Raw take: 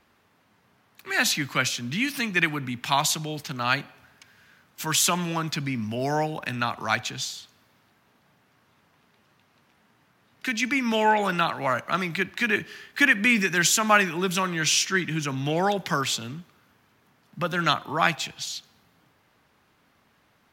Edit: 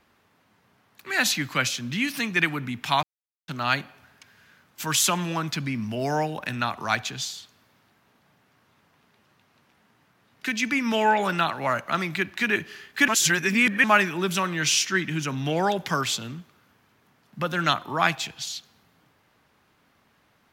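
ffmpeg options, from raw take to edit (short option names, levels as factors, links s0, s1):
-filter_complex "[0:a]asplit=5[s0][s1][s2][s3][s4];[s0]atrim=end=3.03,asetpts=PTS-STARTPTS,afade=t=out:st=3.026:d=0.004:c=hsin[s5];[s1]atrim=start=3.03:end=3.48,asetpts=PTS-STARTPTS,volume=0[s6];[s2]atrim=start=3.48:end=13.082,asetpts=PTS-STARTPTS,afade=t=in:d=0.004:c=hsin[s7];[s3]atrim=start=13.078:end=13.842,asetpts=PTS-STARTPTS,areverse[s8];[s4]atrim=start=13.838[s9];[s5][s6][s7]concat=n=3:v=0:a=1[s10];[s10][s8]acrossfade=d=0.004:c1=hsin:c2=hsin[s11];[s11][s9]acrossfade=d=0.004:c1=hsin:c2=hsin"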